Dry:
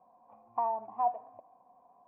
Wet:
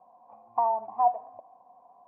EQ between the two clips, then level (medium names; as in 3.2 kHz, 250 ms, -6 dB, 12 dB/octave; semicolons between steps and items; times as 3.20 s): distance through air 87 m; peaking EQ 790 Hz +7 dB 1.2 oct; 0.0 dB